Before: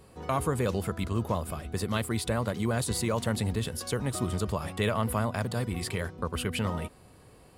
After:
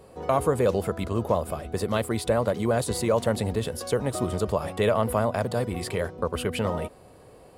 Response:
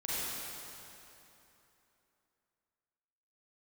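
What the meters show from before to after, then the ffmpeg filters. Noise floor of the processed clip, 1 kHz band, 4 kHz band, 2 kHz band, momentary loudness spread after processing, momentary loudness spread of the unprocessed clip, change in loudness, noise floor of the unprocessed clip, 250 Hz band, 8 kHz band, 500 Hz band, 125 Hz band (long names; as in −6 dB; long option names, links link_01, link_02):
−51 dBFS, +4.5 dB, +0.5 dB, +1.0 dB, 6 LU, 4 LU, +4.0 dB, −55 dBFS, +2.5 dB, 0.0 dB, +8.5 dB, +0.5 dB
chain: -af "equalizer=frequency=560:width=0.97:gain=9.5"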